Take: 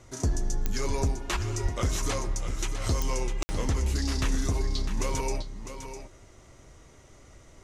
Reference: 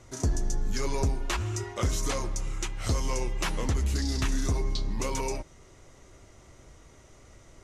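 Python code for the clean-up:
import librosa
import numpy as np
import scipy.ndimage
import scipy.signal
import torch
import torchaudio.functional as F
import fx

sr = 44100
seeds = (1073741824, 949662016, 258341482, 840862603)

y = fx.fix_declick_ar(x, sr, threshold=10.0)
y = fx.fix_deplosive(y, sr, at_s=(1.62,))
y = fx.fix_ambience(y, sr, seeds[0], print_start_s=6.78, print_end_s=7.28, start_s=3.43, end_s=3.49)
y = fx.fix_echo_inverse(y, sr, delay_ms=653, level_db=-9.5)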